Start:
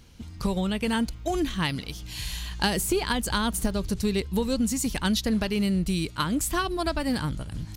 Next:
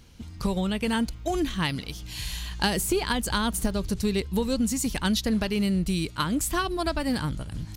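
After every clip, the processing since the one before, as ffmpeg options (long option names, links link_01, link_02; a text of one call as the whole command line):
ffmpeg -i in.wav -af anull out.wav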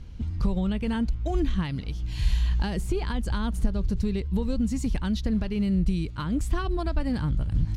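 ffmpeg -i in.wav -af "alimiter=limit=-22.5dB:level=0:latency=1:release=446,aemphasis=mode=reproduction:type=bsi" out.wav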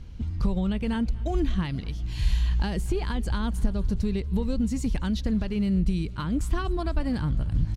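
ffmpeg -i in.wav -af "aecho=1:1:239|478|717|956:0.0708|0.0404|0.023|0.0131" out.wav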